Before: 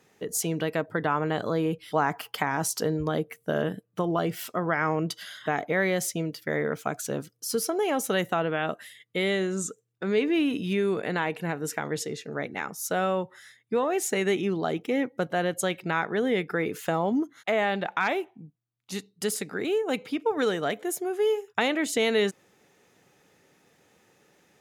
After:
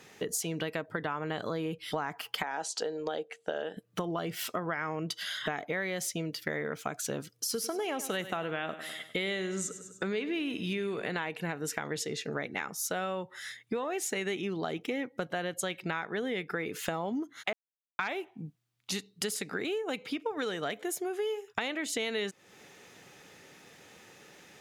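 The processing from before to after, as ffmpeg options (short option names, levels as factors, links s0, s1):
-filter_complex "[0:a]asettb=1/sr,asplit=3[s0][s1][s2];[s0]atrim=end=2.434[s3];[s1]atrim=start=2.43:end=3.77,asetpts=PTS-STARTPTS,afade=t=in:d=0.004:c=qsin,afade=t=out:st=1.336:d=0.004:c=qsin,highpass=430,equalizer=f=480:t=q:w=4:g=4,equalizer=f=800:t=q:w=4:g=5,equalizer=f=1100:t=q:w=4:g=-9,equalizer=f=2100:t=q:w=4:g=-7,equalizer=f=5600:t=q:w=4:g=-7,lowpass=f=7500:w=0.5412,lowpass=f=7500:w=1.3066[s4];[s2]atrim=start=3.766[s5];[s3][s4]acrossfade=d=0.004:c1=hsin:c2=qsin[s6];[s6][s5]acrossfade=d=0.004:c1=qsin:c2=hsin,asettb=1/sr,asplit=3[s7][s8][s9];[s7]atrim=end=7.354[s10];[s8]atrim=start=7.35:end=11.18,asetpts=PTS-STARTPTS,afade=t=in:d=0.004:c=qsin,afade=t=out:st=3.826:d=0.004:c=qsin,aecho=1:1:100|200|300|400:0.178|0.0765|0.0329|0.0141,atrim=end_sample=168903[s11];[s9]atrim=start=11.176[s12];[s10][s11]acrossfade=d=0.004:c1=hsin:c2=qsin[s13];[s13][s12]acrossfade=d=0.004:c1=qsin:c2=hsin,asplit=3[s14][s15][s16];[s14]atrim=end=17.53,asetpts=PTS-STARTPTS,afade=t=out:st=17.526:d=0.004:c=hsin[s17];[s15]atrim=start=17.53:end=17.99,asetpts=PTS-STARTPTS,volume=0[s18];[s16]atrim=start=17.99,asetpts=PTS-STARTPTS,afade=t=in:d=0.004:c=hsin[s19];[s17][s18][s19]concat=n=3:v=0:a=1,equalizer=f=3300:t=o:w=2.6:g=5.5,acompressor=threshold=0.0126:ratio=5,volume=1.88"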